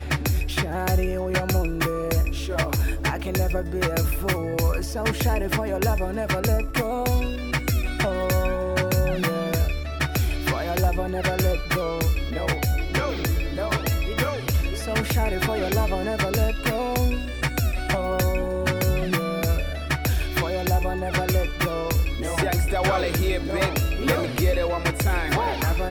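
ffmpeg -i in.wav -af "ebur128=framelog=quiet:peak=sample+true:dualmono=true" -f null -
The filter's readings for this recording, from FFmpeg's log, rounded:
Integrated loudness:
  I:         -21.3 LUFS
  Threshold: -31.3 LUFS
Loudness range:
  LRA:         1.2 LU
  Threshold: -41.3 LUFS
  LRA low:   -21.7 LUFS
  LRA high:  -20.5 LUFS
Sample peak:
  Peak:       -9.6 dBFS
True peak:
  Peak:       -9.6 dBFS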